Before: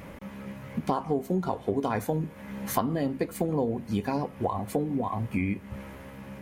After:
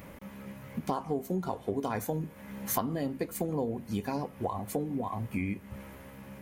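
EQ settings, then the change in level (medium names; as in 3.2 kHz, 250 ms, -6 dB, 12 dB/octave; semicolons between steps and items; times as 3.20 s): treble shelf 10 kHz +11 dB; dynamic bell 6.3 kHz, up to +4 dB, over -55 dBFS, Q 2.4; -4.5 dB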